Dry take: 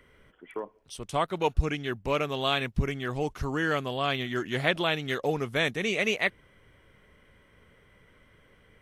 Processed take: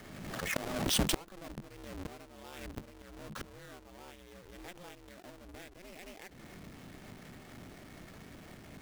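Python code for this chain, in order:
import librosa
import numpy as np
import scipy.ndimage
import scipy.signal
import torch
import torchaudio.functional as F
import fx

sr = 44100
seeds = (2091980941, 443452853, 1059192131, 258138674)

y = fx.halfwave_hold(x, sr)
y = fx.gate_flip(y, sr, shuts_db=-25.0, range_db=-31)
y = y * np.sin(2.0 * np.pi * 180.0 * np.arange(len(y)) / sr)
y = fx.pre_swell(y, sr, db_per_s=36.0)
y = y * librosa.db_to_amplitude(5.5)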